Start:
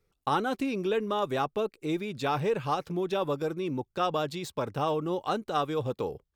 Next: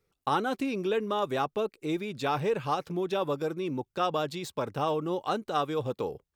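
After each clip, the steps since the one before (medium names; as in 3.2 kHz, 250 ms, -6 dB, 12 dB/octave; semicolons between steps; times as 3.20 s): bass shelf 66 Hz -9 dB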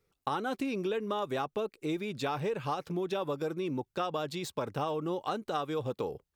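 compression, threshold -29 dBFS, peak gain reduction 7 dB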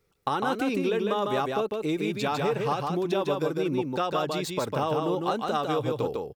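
delay 152 ms -3.5 dB; trim +5 dB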